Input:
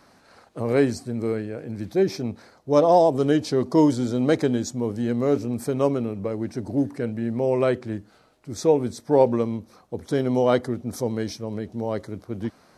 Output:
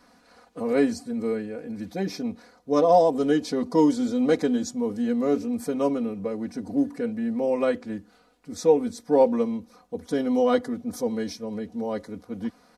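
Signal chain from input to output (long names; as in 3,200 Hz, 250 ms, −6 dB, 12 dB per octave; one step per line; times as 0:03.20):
comb filter 4.1 ms, depth 99%
level −5 dB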